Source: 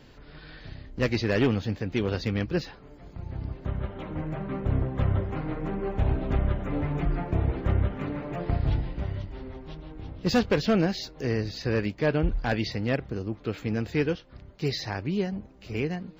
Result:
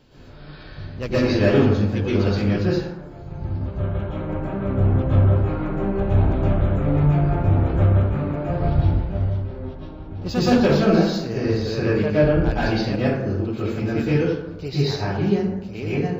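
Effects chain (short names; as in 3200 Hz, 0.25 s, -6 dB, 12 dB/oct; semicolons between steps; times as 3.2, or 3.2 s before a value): bell 1900 Hz -6.5 dB 0.36 oct; plate-style reverb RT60 0.93 s, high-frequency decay 0.45×, pre-delay 0.105 s, DRR -10 dB; 8.04–10.22 mismatched tape noise reduction decoder only; gain -3.5 dB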